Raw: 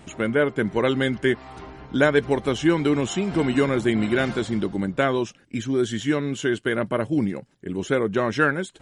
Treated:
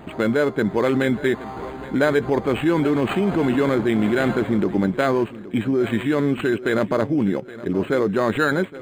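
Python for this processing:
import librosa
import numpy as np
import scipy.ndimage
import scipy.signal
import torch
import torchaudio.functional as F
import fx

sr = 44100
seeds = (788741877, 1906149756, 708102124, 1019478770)

p1 = fx.wiener(x, sr, points=9)
p2 = fx.low_shelf(p1, sr, hz=170.0, db=-8.5)
p3 = fx.over_compress(p2, sr, threshold_db=-28.0, ratio=-1.0)
p4 = p2 + F.gain(torch.from_numpy(p3), 2.0).numpy()
p5 = fx.echo_feedback(p4, sr, ms=820, feedback_pct=39, wet_db=-17.0)
y = np.interp(np.arange(len(p5)), np.arange(len(p5))[::8], p5[::8])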